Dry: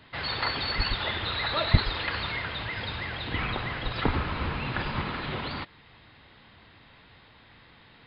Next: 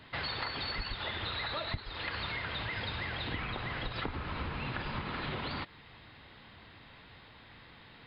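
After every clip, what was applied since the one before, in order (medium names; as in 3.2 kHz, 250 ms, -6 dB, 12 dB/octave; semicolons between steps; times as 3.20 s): compression 16:1, threshold -33 dBFS, peak gain reduction 21.5 dB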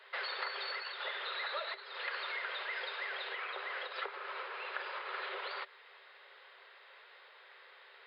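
rippled Chebyshev high-pass 380 Hz, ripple 6 dB; trim +1 dB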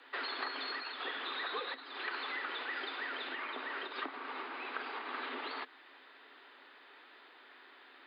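frequency shift -130 Hz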